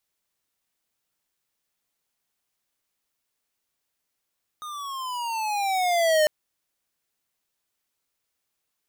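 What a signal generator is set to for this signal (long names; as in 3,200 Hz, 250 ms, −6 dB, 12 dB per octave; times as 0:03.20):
pitch glide with a swell square, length 1.65 s, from 1,240 Hz, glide −12.5 semitones, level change +17.5 dB, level −18.5 dB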